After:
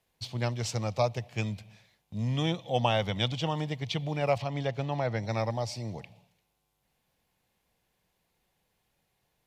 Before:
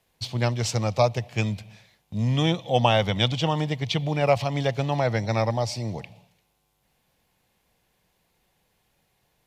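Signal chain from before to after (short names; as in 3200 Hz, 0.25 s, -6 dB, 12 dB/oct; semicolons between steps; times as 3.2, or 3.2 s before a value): 4.38–5.23 high shelf 6700 Hz -10.5 dB; gain -6.5 dB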